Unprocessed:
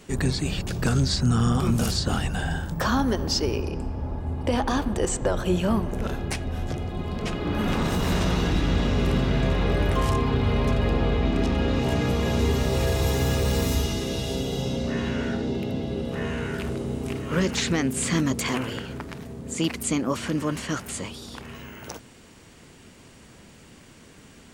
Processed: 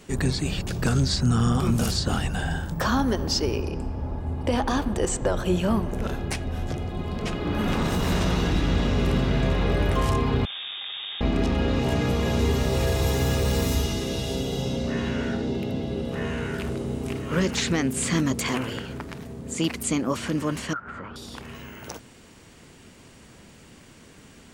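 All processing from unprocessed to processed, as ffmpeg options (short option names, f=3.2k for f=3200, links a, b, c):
-filter_complex "[0:a]asettb=1/sr,asplit=3[a][b][c];[a]atrim=end=10.454[d];[b]atrim=start=10.45:end=11.21,asetpts=PTS-STARTPTS,afade=t=in:d=0.004:c=qsin,afade=t=out:st=0.756:d=0.004:c=qsin,highpass=120,aeval=exprs='(tanh(50.1*val(0)+0.75)-tanh(0.75))/50.1':c=same,lowpass=f=3.1k:t=q:w=0.5098,lowpass=f=3.1k:t=q:w=0.6013,lowpass=f=3.1k:t=q:w=0.9,lowpass=f=3.1k:t=q:w=2.563,afreqshift=-3700[e];[c]atrim=start=11.206[f];[d][e]acrossfade=d=0.004:c1=hsin:c2=qsin[g];[g][f]acrossfade=d=0.004:c1=qsin:c2=hsin,asettb=1/sr,asplit=3[h][i][j];[h]atrim=end=20.734[k];[i]atrim=start=20.73:end=21.16,asetpts=PTS-STARTPTS,afade=t=in:d=0.004:c=qsin,afade=t=out:st=0.426:d=0.004:c=qsin,lowpass=f=1.4k:t=q:w=9.1,acompressor=threshold=-34dB:ratio=3:attack=3.2:release=140:knee=1:detection=peak[l];[j]atrim=start=21.156[m];[k][l]acrossfade=d=0.004:c1=hsin:c2=qsin[n];[n][m]acrossfade=d=0.004:c1=qsin:c2=hsin"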